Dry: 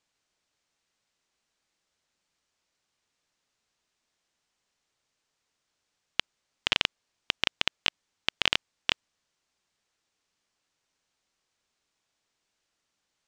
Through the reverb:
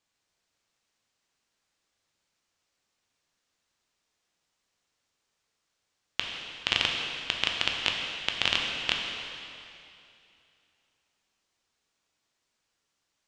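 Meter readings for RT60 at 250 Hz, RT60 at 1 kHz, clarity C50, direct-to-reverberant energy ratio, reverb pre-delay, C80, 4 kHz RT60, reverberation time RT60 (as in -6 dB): 2.8 s, 2.6 s, 2.0 dB, 0.5 dB, 5 ms, 3.0 dB, 2.5 s, 2.7 s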